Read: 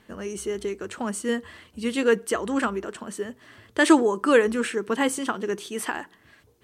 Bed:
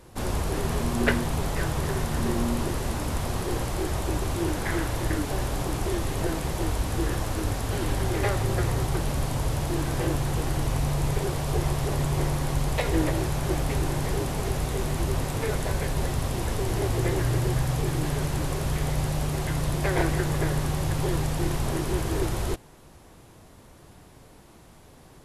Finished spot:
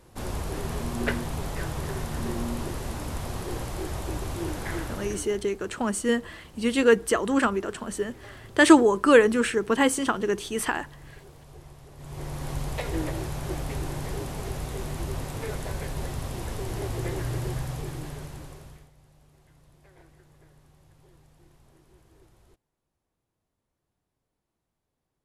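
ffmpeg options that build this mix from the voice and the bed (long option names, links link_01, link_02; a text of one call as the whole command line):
ffmpeg -i stem1.wav -i stem2.wav -filter_complex "[0:a]adelay=4800,volume=2dB[link_01];[1:a]volume=12dB,afade=type=out:start_time=4.76:duration=0.65:silence=0.133352,afade=type=in:start_time=11.96:duration=0.55:silence=0.149624,afade=type=out:start_time=17.48:duration=1.42:silence=0.0501187[link_02];[link_01][link_02]amix=inputs=2:normalize=0" out.wav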